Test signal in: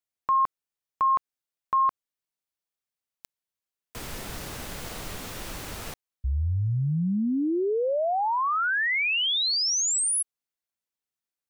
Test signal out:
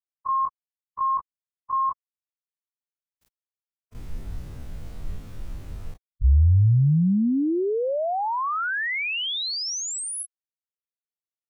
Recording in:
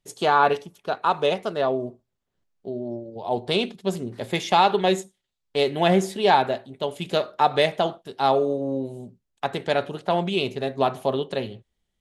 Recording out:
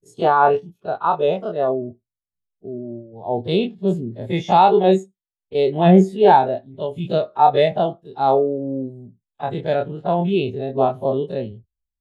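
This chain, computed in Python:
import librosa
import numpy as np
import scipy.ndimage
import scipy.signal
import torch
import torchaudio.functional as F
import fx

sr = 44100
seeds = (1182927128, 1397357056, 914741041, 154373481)

y = fx.spec_dilate(x, sr, span_ms=60)
y = fx.low_shelf(y, sr, hz=210.0, db=10.0)
y = fx.spectral_expand(y, sr, expansion=1.5)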